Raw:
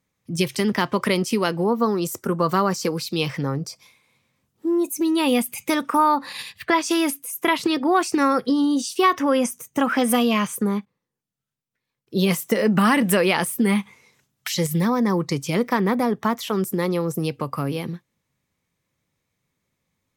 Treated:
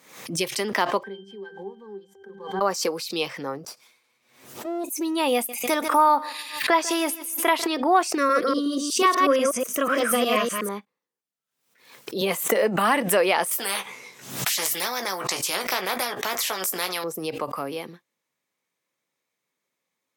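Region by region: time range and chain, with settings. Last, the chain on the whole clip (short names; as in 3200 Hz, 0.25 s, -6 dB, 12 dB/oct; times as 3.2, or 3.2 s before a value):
1.03–2.61 block floating point 5-bit + low shelf 170 Hz -9 dB + octave resonator G, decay 0.22 s
3.67–4.84 minimum comb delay 8.2 ms + low shelf 170 Hz +5 dB + compressor 2:1, threshold -24 dBFS
5.34–7.67 high shelf 9600 Hz +4.5 dB + feedback echo 0.147 s, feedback 40%, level -18 dB
8.17–10.69 reverse delay 0.122 s, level -2 dB + Butterworth band-stop 850 Hz, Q 2.5
12.21–12.96 bell 5400 Hz -9.5 dB 0.28 oct + three-band squash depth 70%
13.51–17.04 low shelf 240 Hz +10 dB + doubler 16 ms -8 dB + spectral compressor 4:1
whole clip: HPF 370 Hz 12 dB/oct; dynamic EQ 680 Hz, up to +6 dB, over -34 dBFS, Q 1.4; backwards sustainer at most 88 dB/s; gain -2.5 dB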